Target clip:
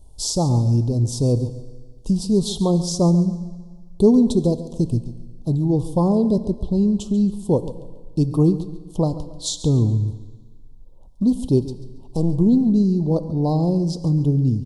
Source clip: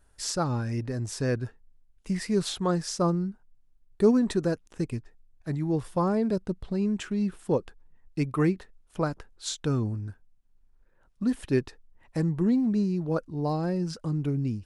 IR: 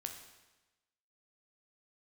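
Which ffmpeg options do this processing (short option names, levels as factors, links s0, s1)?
-filter_complex "[0:a]lowshelf=f=180:g=9,asplit=2[s0][s1];[s1]acompressor=threshold=0.0251:ratio=6,volume=1.06[s2];[s0][s2]amix=inputs=2:normalize=0,asettb=1/sr,asplit=3[s3][s4][s5];[s3]atrim=end=11.604[s6];[s4]atrim=start=11.6:end=12.33,asetpts=PTS-STARTPTS,afade=t=in:d=0.004:c=qsin,afade=t=out:st=0.726:d=0.004:c=qsin,aeval=exprs='clip(val(0),-1,0.0211)':c=same[s7];[s5]atrim=start=12.326[s8];[s6][s7]acrossfade=d=0.004:c1=hsin:c2=qsin[s9];[s9][s8]acrossfade=d=0.004:c1=qsin:c2=hsin,asuperstop=centerf=1800:order=8:qfactor=0.77,aecho=1:1:139|278|417:0.178|0.0516|0.015,asplit=2[s10][s11];[1:a]atrim=start_sample=2205,asetrate=29547,aresample=44100[s12];[s11][s12]afir=irnorm=-1:irlink=0,volume=0.447[s13];[s10][s13]amix=inputs=2:normalize=0"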